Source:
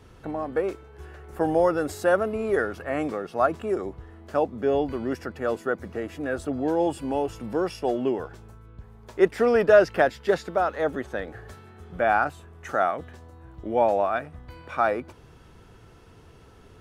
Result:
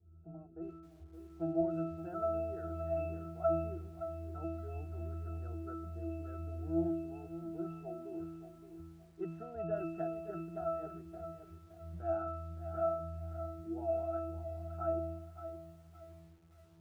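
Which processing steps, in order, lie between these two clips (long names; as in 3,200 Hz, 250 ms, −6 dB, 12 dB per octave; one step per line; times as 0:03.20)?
dynamic equaliser 670 Hz, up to +3 dB, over −32 dBFS, Q 4.8
resonances in every octave E, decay 0.76 s
low-pass that shuts in the quiet parts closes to 500 Hz, open at −36.5 dBFS
feedback echo at a low word length 569 ms, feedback 35%, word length 11 bits, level −10.5 dB
level +4 dB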